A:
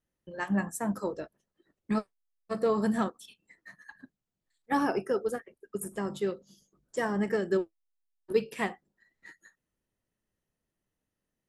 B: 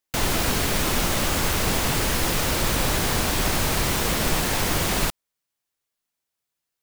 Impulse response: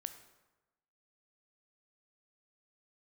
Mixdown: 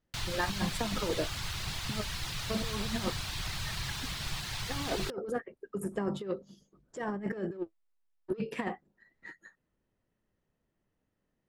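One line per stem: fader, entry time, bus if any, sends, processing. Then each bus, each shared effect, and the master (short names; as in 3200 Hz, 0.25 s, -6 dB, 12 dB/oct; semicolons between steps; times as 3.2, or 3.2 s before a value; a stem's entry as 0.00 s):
+1.0 dB, 0.00 s, no send, high shelf 3300 Hz -10.5 dB; soft clip -19.5 dBFS, distortion -20 dB; negative-ratio compressor -34 dBFS, ratio -0.5
-12.5 dB, 0.00 s, no send, reverb removal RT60 0.52 s; graphic EQ 125/250/500/4000 Hz +7/-11/-12/+7 dB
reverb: off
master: high shelf 10000 Hz -11 dB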